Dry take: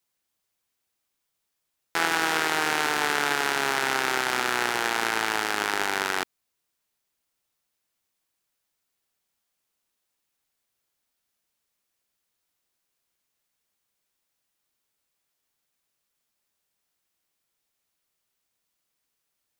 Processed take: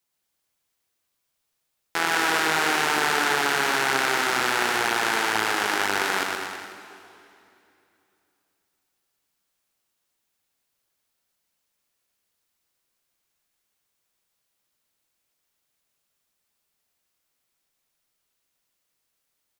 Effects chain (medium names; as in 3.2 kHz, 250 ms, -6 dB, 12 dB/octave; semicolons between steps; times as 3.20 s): bouncing-ball echo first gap 120 ms, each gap 0.9×, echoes 5; on a send at -11 dB: reverberation RT60 2.9 s, pre-delay 100 ms